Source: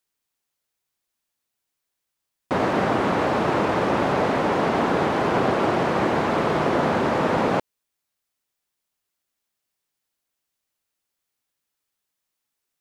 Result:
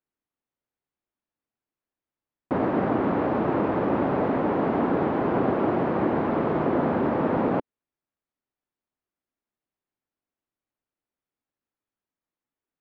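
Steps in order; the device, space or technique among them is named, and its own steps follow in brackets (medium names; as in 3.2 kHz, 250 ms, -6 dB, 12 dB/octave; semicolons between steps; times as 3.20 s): phone in a pocket (low-pass 3.1 kHz 12 dB/octave; peaking EQ 280 Hz +5 dB 0.78 oct; treble shelf 2 kHz -12 dB); trim -3 dB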